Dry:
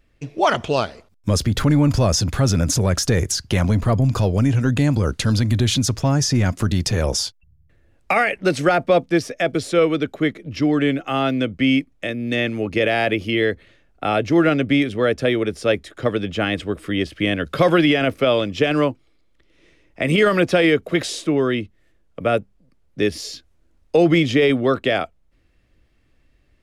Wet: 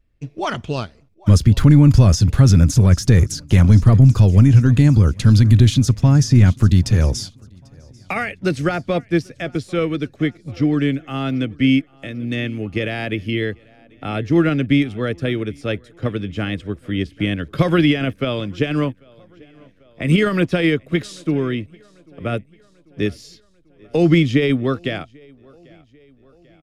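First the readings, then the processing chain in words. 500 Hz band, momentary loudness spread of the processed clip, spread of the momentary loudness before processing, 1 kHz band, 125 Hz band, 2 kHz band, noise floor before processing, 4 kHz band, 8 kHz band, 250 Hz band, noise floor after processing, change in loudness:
-4.5 dB, 15 LU, 8 LU, -5.5 dB, +7.5 dB, -3.0 dB, -59 dBFS, -3.5 dB, -4.0 dB, +2.0 dB, -53 dBFS, +2.5 dB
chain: low shelf 240 Hz +10 dB; on a send: feedback echo 0.792 s, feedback 59%, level -21 dB; on the sum: dynamic EQ 620 Hz, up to -6 dB, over -30 dBFS, Q 1; upward expander 1.5:1, over -34 dBFS; gain +1.5 dB

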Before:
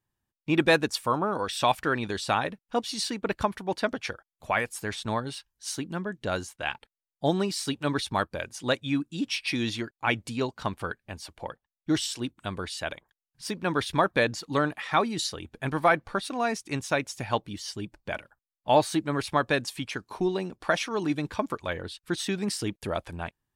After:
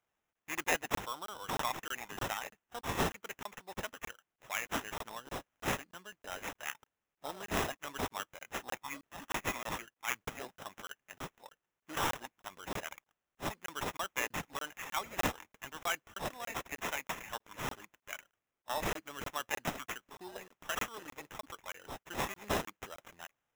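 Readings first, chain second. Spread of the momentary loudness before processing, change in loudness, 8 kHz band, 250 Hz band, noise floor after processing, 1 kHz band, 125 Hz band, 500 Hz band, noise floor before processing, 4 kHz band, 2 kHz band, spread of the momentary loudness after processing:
12 LU, -10.5 dB, -5.5 dB, -16.0 dB, under -85 dBFS, -10.0 dB, -13.0 dB, -14.0 dB, under -85 dBFS, -9.5 dB, -8.0 dB, 13 LU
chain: differentiator; sample-rate reducer 4500 Hz, jitter 0%; crackling interface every 0.31 s, samples 1024, zero, from 0.33; gain +2.5 dB

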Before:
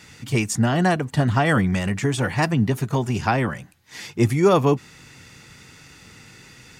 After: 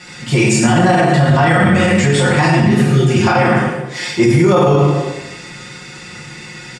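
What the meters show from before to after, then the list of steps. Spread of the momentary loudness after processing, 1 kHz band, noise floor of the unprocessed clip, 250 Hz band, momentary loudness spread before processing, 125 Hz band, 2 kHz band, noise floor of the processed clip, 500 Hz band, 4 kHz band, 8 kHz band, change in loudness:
20 LU, +9.5 dB, -48 dBFS, +9.0 dB, 9 LU, +9.0 dB, +10.0 dB, -34 dBFS, +9.0 dB, +10.5 dB, +9.5 dB, +8.5 dB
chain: LPF 8800 Hz 24 dB/oct; spectral repair 2.49–3.12, 440–1200 Hz after; low shelf 63 Hz -10 dB; notch 6200 Hz, Q 7; comb 5.6 ms, depth 70%; on a send: tape echo 0.106 s, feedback 56%, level -6 dB, low-pass 1000 Hz; on the sum: plate-style reverb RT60 0.88 s, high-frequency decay 1×, DRR -5 dB; maximiser +9 dB; gain -2.5 dB

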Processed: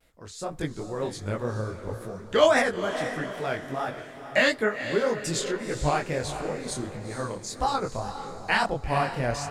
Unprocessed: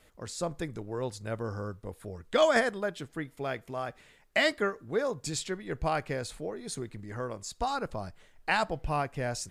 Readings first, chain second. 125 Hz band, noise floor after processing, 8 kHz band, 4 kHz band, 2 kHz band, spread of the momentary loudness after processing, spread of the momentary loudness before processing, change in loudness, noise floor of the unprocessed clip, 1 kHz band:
+5.0 dB, -44 dBFS, +4.0 dB, +4.0 dB, +5.0 dB, 13 LU, 13 LU, +4.5 dB, -61 dBFS, +5.0 dB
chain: AGC gain up to 8 dB; wow and flutter 130 cents; diffused feedback echo 0.462 s, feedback 41%, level -9.5 dB; detuned doubles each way 54 cents

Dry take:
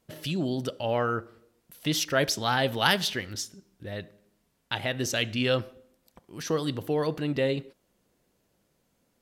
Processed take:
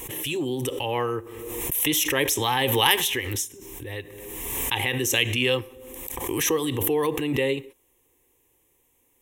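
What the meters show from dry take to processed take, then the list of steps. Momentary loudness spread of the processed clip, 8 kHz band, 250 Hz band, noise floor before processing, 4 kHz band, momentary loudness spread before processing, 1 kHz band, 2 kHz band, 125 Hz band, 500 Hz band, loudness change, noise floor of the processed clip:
15 LU, +9.0 dB, +2.0 dB, -73 dBFS, +5.0 dB, 15 LU, +3.0 dB, +4.0 dB, +1.0 dB, +3.0 dB, +4.0 dB, -66 dBFS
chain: high shelf 4600 Hz +11.5 dB; fixed phaser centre 950 Hz, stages 8; backwards sustainer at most 32 dB/s; gain +4.5 dB

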